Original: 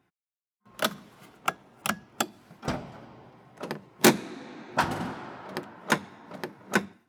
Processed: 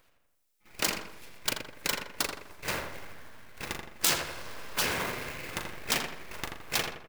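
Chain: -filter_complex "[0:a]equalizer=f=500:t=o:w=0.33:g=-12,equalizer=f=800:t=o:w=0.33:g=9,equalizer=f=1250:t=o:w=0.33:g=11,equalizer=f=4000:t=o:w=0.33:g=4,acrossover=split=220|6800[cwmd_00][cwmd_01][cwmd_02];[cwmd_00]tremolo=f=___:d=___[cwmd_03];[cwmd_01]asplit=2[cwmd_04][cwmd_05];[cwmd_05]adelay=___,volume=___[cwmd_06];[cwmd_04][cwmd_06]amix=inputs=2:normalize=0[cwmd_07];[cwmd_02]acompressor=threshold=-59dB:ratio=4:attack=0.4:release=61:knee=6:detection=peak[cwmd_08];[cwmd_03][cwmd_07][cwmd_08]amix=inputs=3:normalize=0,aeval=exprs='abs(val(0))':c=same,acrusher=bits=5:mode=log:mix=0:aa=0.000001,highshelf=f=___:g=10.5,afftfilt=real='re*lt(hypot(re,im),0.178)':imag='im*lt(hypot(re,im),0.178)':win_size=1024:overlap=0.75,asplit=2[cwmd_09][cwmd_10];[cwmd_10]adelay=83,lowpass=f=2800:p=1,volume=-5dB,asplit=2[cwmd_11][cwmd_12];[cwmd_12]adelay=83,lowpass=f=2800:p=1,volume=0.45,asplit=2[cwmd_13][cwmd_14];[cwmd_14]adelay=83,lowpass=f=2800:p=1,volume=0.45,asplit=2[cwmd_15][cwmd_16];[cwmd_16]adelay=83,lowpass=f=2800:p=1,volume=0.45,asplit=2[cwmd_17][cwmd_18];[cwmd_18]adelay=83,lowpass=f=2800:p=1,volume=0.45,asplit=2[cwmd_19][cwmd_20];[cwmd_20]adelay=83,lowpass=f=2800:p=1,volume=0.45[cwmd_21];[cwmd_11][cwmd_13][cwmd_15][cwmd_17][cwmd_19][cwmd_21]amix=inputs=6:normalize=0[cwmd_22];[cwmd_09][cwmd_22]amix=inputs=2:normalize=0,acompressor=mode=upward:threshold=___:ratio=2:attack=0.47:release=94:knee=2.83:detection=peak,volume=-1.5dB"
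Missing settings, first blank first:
3.6, 0.84, 39, -7.5dB, 5400, -51dB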